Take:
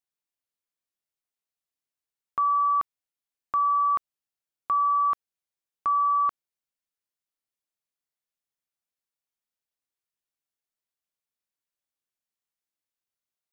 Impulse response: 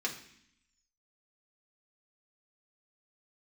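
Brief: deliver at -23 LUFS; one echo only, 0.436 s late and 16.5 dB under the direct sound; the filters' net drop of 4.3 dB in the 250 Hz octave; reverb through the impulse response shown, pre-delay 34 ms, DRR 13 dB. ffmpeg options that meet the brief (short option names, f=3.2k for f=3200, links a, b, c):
-filter_complex "[0:a]equalizer=f=250:t=o:g=-6,aecho=1:1:436:0.15,asplit=2[a][b];[1:a]atrim=start_sample=2205,adelay=34[c];[b][c]afir=irnorm=-1:irlink=0,volume=-17.5dB[d];[a][d]amix=inputs=2:normalize=0,volume=1.5dB"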